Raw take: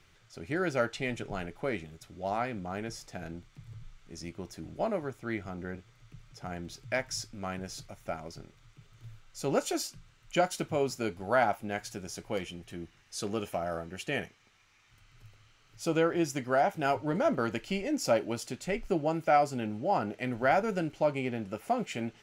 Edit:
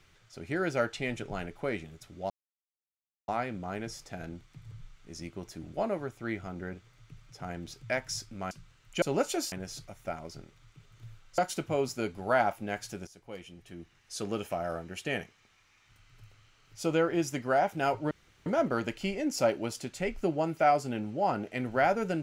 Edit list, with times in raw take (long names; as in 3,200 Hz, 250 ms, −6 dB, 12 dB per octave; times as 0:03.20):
0:02.30: splice in silence 0.98 s
0:07.53–0:09.39: swap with 0:09.89–0:10.40
0:12.09–0:13.36: fade in, from −16 dB
0:17.13: splice in room tone 0.35 s